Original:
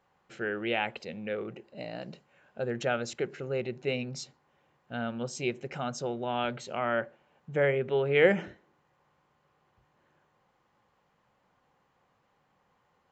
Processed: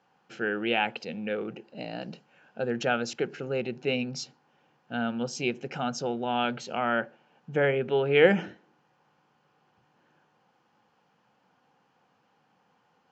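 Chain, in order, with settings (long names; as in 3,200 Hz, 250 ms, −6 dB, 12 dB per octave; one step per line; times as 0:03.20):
loudspeaker in its box 190–6,000 Hz, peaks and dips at 380 Hz −6 dB, 590 Hz −8 dB, 1,100 Hz −8 dB, 2,000 Hz −9 dB, 3,800 Hz −6 dB
level +7.5 dB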